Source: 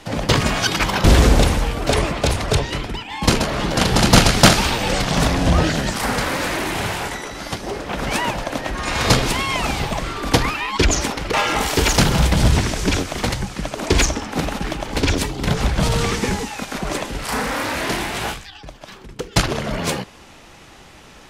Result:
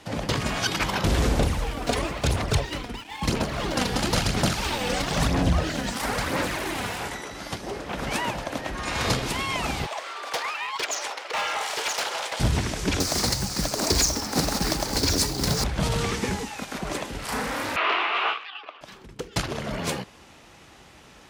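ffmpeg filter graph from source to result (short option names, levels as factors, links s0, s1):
-filter_complex "[0:a]asettb=1/sr,asplit=3[s0][s1][s2];[s0]atrim=end=1.394[s3];[s1]atrim=start=1.39:end=6.99,asetpts=PTS-STARTPTS,afade=t=in:d=0.004:c=qsin,afade=t=out:st=5.596:d=0.004:c=qsin,aphaser=in_gain=1:out_gain=1:delay=4.2:decay=0.45:speed=1:type=sinusoidal,aeval=exprs='sgn(val(0))*max(abs(val(0))-0.0119,0)':c=same[s4];[s2]atrim=start=6.986[s5];[s3][s4]acrossfade=d=0.004:c1=hsin:c2=qsin[s6];[s6][s5]acrossfade=d=0.004:c1=qsin:c2=hsin,asettb=1/sr,asplit=3[s7][s8][s9];[s7]atrim=end=9.864[s10];[s8]atrim=start=9.86:end=12.4,asetpts=PTS-STARTPTS,afade=t=in:d=0.004:c=qsin,afade=t=out:st=2.536:d=0.004:c=qsin,highpass=f=530:w=0.5412,highpass=f=530:w=1.3066,adynamicsmooth=sensitivity=7:basefreq=7900,asoftclip=type=hard:threshold=0.15[s11];[s9]atrim=start=12.396[s12];[s10][s11]acrossfade=d=0.004:c1=hsin:c2=qsin[s13];[s13][s12]acrossfade=d=0.004:c1=qsin:c2=hsin,asettb=1/sr,asplit=3[s14][s15][s16];[s14]atrim=end=13.004[s17];[s15]atrim=start=13:end=15.64,asetpts=PTS-STARTPTS,afade=t=in:d=0.004:c=qsin,afade=t=out:st=2.636:d=0.004:c=qsin,highshelf=f=3800:t=q:w=3:g=6.5,acrusher=bits=2:mode=log:mix=0:aa=0.000001,acontrast=55[s18];[s16]atrim=start=15.636[s19];[s17][s18]acrossfade=d=0.004:c1=hsin:c2=qsin[s20];[s20][s19]acrossfade=d=0.004:c1=qsin:c2=hsin,asettb=1/sr,asplit=3[s21][s22][s23];[s21]atrim=end=17.764[s24];[s22]atrim=start=17.76:end=18.81,asetpts=PTS-STARTPTS,afade=t=in:d=0.004:c=qsin,afade=t=out:st=1.046:d=0.004:c=qsin,acontrast=83,highpass=f=460:w=0.5412,highpass=f=460:w=1.3066,equalizer=f=550:t=q:w=4:g=-7,equalizer=f=820:t=q:w=4:g=-4,equalizer=f=1200:t=q:w=4:g=10,equalizer=f=1700:t=q:w=4:g=-5,equalizer=f=2700:t=q:w=4:g=6,lowpass=f=3200:w=0.5412,lowpass=f=3200:w=1.3066[s25];[s23]atrim=start=18.806[s26];[s24][s25]acrossfade=d=0.004:c1=hsin:c2=qsin[s27];[s27][s26]acrossfade=d=0.004:c1=qsin:c2=hsin,highpass=43,alimiter=limit=0.501:level=0:latency=1:release=325,volume=0.501"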